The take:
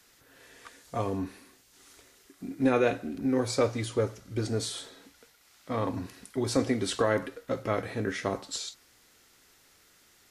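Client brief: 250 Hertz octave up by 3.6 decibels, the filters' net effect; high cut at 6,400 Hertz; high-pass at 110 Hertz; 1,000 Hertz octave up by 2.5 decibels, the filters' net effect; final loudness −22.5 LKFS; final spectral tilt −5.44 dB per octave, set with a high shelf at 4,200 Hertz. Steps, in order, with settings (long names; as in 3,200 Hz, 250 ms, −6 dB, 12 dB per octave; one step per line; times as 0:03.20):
high-pass filter 110 Hz
low-pass filter 6,400 Hz
parametric band 250 Hz +4 dB
parametric band 1,000 Hz +3.5 dB
high-shelf EQ 4,200 Hz −6 dB
level +6 dB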